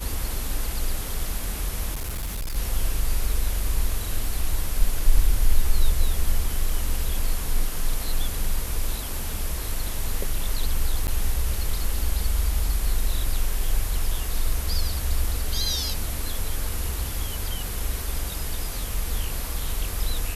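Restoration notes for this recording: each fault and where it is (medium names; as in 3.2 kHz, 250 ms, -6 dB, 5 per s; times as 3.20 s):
1.93–2.57 s: clipped -25.5 dBFS
11.07–11.08 s: dropout 8.9 ms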